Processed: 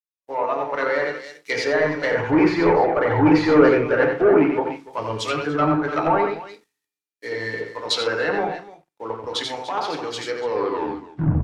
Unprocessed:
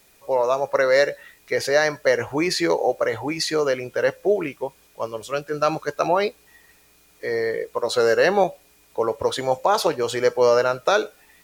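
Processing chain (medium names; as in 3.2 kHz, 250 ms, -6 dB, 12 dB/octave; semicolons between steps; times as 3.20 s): tape stop on the ending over 1.03 s; Doppler pass-by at 3.88 s, 6 m/s, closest 6.4 m; high-pass 120 Hz 12 dB/octave; in parallel at +3 dB: compression, threshold -32 dBFS, peak gain reduction 16.5 dB; on the sum: peaking EQ 550 Hz -8 dB 0.61 oct; on a send at -5.5 dB: reverberation RT60 0.40 s, pre-delay 3 ms; on the sum: waveshaping leveller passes 3; multi-tap echo 89/124/295 ms -4/-17/-10 dB; low-pass that closes with the level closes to 1.7 kHz, closed at -11 dBFS; three bands expanded up and down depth 100%; trim -4.5 dB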